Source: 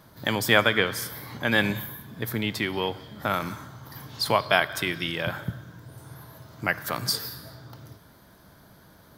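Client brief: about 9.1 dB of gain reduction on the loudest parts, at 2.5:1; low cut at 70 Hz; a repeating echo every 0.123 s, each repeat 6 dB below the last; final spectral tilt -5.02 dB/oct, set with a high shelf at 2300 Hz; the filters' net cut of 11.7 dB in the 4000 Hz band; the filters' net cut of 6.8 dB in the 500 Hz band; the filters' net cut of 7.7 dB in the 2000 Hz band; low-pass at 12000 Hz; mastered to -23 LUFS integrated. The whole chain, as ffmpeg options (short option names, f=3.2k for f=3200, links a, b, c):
-af "highpass=70,lowpass=12k,equalizer=f=500:t=o:g=-8,equalizer=f=2k:t=o:g=-5,highshelf=f=2.3k:g=-5.5,equalizer=f=4k:t=o:g=-8.5,acompressor=threshold=-35dB:ratio=2.5,aecho=1:1:123|246|369|492|615|738:0.501|0.251|0.125|0.0626|0.0313|0.0157,volume=15dB"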